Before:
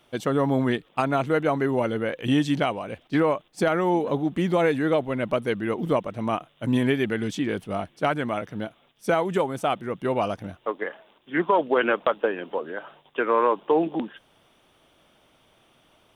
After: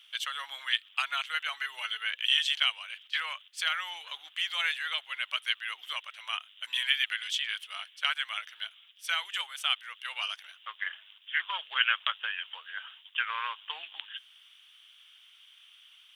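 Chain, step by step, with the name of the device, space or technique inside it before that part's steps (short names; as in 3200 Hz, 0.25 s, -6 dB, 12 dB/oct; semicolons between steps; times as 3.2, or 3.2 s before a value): headphones lying on a table (HPF 1500 Hz 24 dB/oct; bell 3100 Hz +12 dB 0.52 oct); 1.52–2.1 comb 4.6 ms, depth 52%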